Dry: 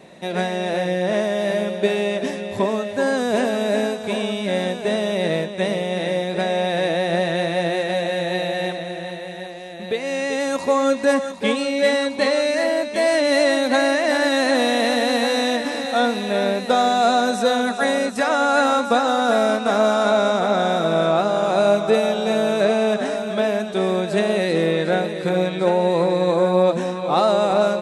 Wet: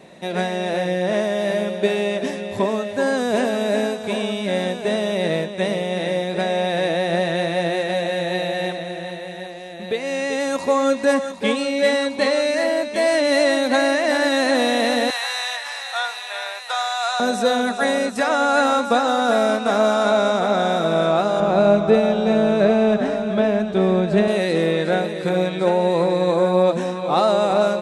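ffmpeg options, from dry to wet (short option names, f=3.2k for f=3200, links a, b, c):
-filter_complex "[0:a]asettb=1/sr,asplit=3[a][b][c];[a]atrim=end=15.104[d];[b]atrim=start=15.1:end=17.2,asetpts=PTS-STARTPTS,afade=t=in:d=0.004:c=qsin,afade=t=out:st=2.096:d=0.004:c=qsin,highpass=f=890:w=0.5412,highpass=f=890:w=1.3066[e];[c]atrim=start=17.196[f];[d][e]acrossfade=d=0.004:c1=hsin:c2=qsin[g];[g][f]acrossfade=d=0.004:c1=qsin:c2=hsin,asettb=1/sr,asplit=3[h][i][j];[h]atrim=end=21.404[k];[i]atrim=start=21.4:end=24.28,asetpts=PTS-STARTPTS,afade=t=in:d=0.004:c=qsin,afade=t=out:st=2.876:d=0.004:c=qsin,aemphasis=mode=reproduction:type=bsi[l];[j]atrim=start=24.276[m];[k][l]acrossfade=d=0.004:c1=hsin:c2=qsin[n];[n][m]acrossfade=d=0.004:c1=qsin:c2=hsin"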